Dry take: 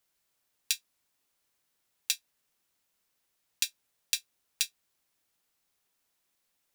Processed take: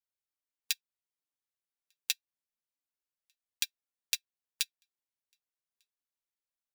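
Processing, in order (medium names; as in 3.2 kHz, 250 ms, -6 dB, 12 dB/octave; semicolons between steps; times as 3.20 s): dynamic bell 8.2 kHz, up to -8 dB, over -46 dBFS, Q 0.83; flange 0.3 Hz, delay 1.1 ms, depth 7.4 ms, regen +56%; delay 1198 ms -23 dB; upward expansion 2.5:1, over -46 dBFS; trim +5 dB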